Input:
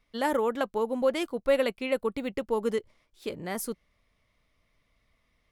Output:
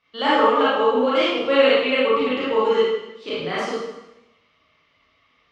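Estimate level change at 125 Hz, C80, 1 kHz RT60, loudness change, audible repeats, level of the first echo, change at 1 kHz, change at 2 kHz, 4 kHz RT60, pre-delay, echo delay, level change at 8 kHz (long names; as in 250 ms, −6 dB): +4.5 dB, 1.5 dB, 0.90 s, +10.0 dB, no echo audible, no echo audible, +13.0 dB, +12.5 dB, 0.90 s, 26 ms, no echo audible, can't be measured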